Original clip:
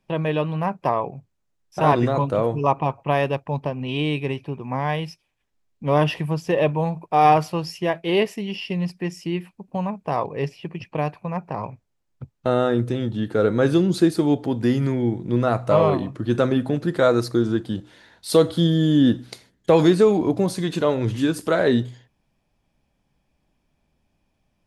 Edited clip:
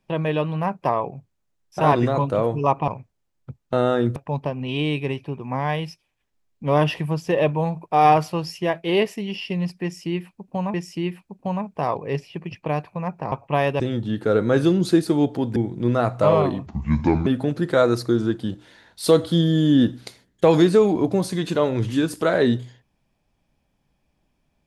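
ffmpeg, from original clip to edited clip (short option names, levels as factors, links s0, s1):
-filter_complex "[0:a]asplit=9[s0][s1][s2][s3][s4][s5][s6][s7][s8];[s0]atrim=end=2.882[s9];[s1]atrim=start=11.608:end=12.892[s10];[s2]atrim=start=3.358:end=9.942[s11];[s3]atrim=start=9.028:end=11.612[s12];[s4]atrim=start=2.878:end=3.362[s13];[s5]atrim=start=12.888:end=14.652[s14];[s6]atrim=start=15.038:end=16.144[s15];[s7]atrim=start=16.14:end=16.52,asetpts=PTS-STARTPTS,asetrate=27783,aresample=44100[s16];[s8]atrim=start=16.516[s17];[s9][s10]acrossfade=d=0.004:c1=hsin:c2=hsin[s18];[s18][s11]acrossfade=d=0.004:c1=hsin:c2=hsin[s19];[s19][s12]acrossfade=d=0.004:c1=hsin:c2=hsin[s20];[s20][s13]acrossfade=d=0.004:c1=hsin:c2=hsin[s21];[s21][s14]acrossfade=d=0.004:c1=hsin:c2=hsin[s22];[s22][s15]acrossfade=d=0.004:c1=hsin:c2=hsin[s23];[s23][s16]acrossfade=d=0.004:c1=hsin:c2=hsin[s24];[s24][s17]acrossfade=d=0.004:c1=hsin:c2=hsin"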